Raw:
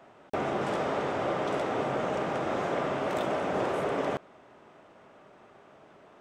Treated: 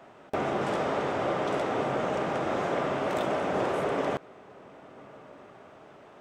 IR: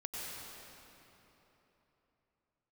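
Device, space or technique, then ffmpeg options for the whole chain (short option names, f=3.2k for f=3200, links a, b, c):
ducked reverb: -filter_complex "[0:a]asplit=3[a][b][c];[1:a]atrim=start_sample=2205[d];[b][d]afir=irnorm=-1:irlink=0[e];[c]apad=whole_len=273671[f];[e][f]sidechaincompress=threshold=-47dB:ratio=8:attack=16:release=707,volume=-7dB[g];[a][g]amix=inputs=2:normalize=0,volume=1dB"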